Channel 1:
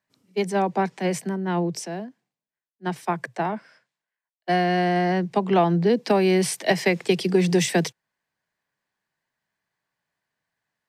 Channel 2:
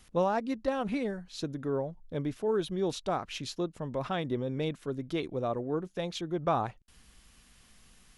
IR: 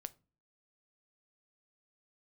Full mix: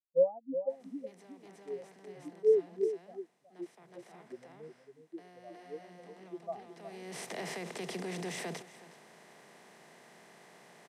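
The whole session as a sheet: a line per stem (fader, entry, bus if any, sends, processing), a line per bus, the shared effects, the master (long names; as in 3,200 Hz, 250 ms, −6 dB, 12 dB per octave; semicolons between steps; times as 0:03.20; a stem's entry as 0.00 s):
−17.5 dB, 0.70 s, no send, echo send −18 dB, compressor on every frequency bin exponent 0.4; brickwall limiter −12.5 dBFS, peak gain reduction 10.5 dB; automatic ducking −19 dB, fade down 1.10 s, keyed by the second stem
+1.0 dB, 0.00 s, no send, echo send −10 dB, every bin expanded away from the loudest bin 4 to 1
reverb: not used
echo: single-tap delay 366 ms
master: low-shelf EQ 87 Hz −8.5 dB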